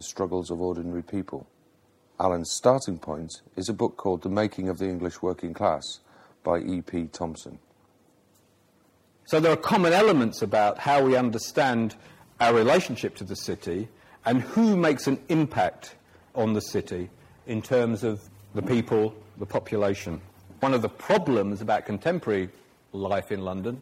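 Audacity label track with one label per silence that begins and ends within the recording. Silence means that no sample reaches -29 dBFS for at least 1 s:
7.460000	9.310000	silence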